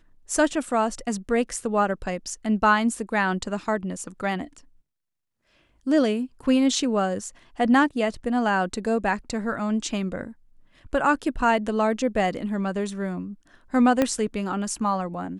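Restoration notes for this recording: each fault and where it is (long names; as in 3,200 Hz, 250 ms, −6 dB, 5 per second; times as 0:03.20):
0:14.02: click −8 dBFS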